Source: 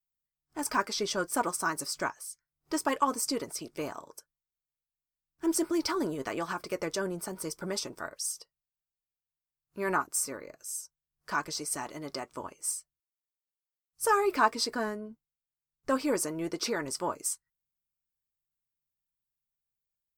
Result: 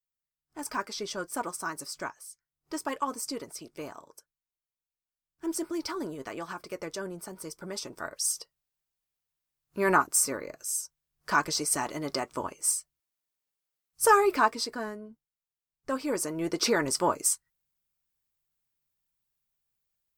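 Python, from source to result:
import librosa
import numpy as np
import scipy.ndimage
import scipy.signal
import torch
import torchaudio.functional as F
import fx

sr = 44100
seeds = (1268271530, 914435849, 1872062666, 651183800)

y = fx.gain(x, sr, db=fx.line((7.71, -4.0), (8.31, 6.0), (14.06, 6.0), (14.72, -3.0), (16.0, -3.0), (16.7, 6.5)))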